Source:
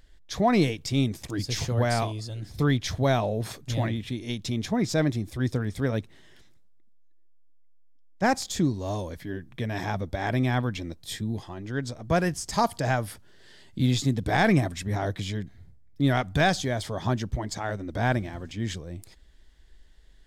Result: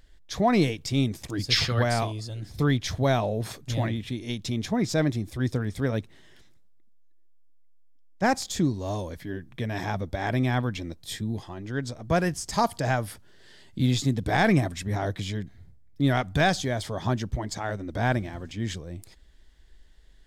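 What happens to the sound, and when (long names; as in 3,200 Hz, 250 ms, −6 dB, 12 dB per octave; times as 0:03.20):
0:01.50–0:01.83: gain on a spectral selection 1,100–5,500 Hz +11 dB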